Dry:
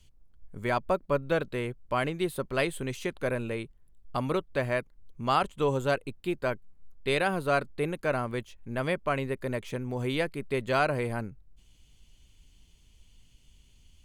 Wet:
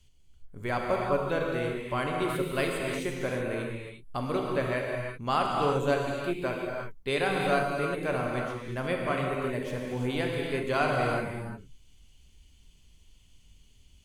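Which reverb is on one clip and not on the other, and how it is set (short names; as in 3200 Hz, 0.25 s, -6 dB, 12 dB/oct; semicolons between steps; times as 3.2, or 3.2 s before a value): non-linear reverb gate 0.39 s flat, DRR -1 dB; gain -3 dB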